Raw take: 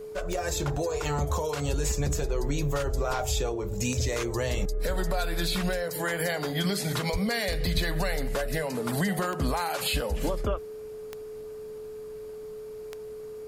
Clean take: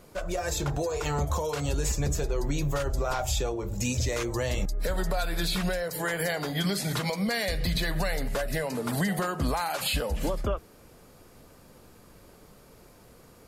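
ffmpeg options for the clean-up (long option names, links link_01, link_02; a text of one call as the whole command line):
ffmpeg -i in.wav -filter_complex "[0:a]adeclick=threshold=4,bandreject=frequency=430:width=30,asplit=3[link_01][link_02][link_03];[link_01]afade=type=out:start_time=7.12:duration=0.02[link_04];[link_02]highpass=frequency=140:width=0.5412,highpass=frequency=140:width=1.3066,afade=type=in:start_time=7.12:duration=0.02,afade=type=out:start_time=7.24:duration=0.02[link_05];[link_03]afade=type=in:start_time=7.24:duration=0.02[link_06];[link_04][link_05][link_06]amix=inputs=3:normalize=0,asplit=3[link_07][link_08][link_09];[link_07]afade=type=out:start_time=7.74:duration=0.02[link_10];[link_08]highpass=frequency=140:width=0.5412,highpass=frequency=140:width=1.3066,afade=type=in:start_time=7.74:duration=0.02,afade=type=out:start_time=7.86:duration=0.02[link_11];[link_09]afade=type=in:start_time=7.86:duration=0.02[link_12];[link_10][link_11][link_12]amix=inputs=3:normalize=0" out.wav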